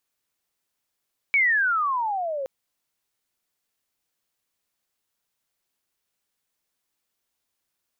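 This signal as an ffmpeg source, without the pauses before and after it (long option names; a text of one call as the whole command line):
ffmpeg -f lavfi -i "aevalsrc='pow(10,(-16-10.5*t/1.12)/20)*sin(2*PI*2300*1.12/log(520/2300)*(exp(log(520/2300)*t/1.12)-1))':duration=1.12:sample_rate=44100" out.wav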